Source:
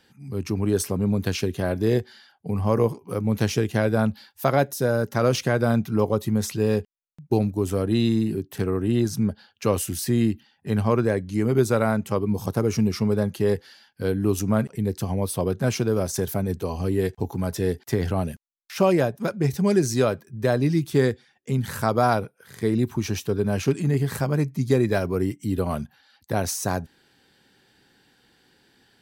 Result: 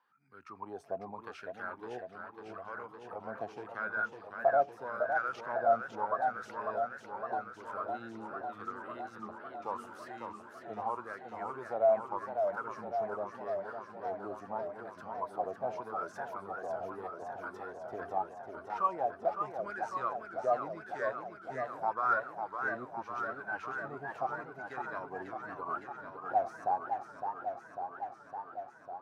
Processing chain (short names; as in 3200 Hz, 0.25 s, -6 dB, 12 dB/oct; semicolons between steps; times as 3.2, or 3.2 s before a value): in parallel at -1 dB: limiter -13.5 dBFS, peak gain reduction 7 dB; on the sum: wah 0.82 Hz 670–1500 Hz, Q 16; warbling echo 0.554 s, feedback 76%, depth 184 cents, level -6 dB; gain +1.5 dB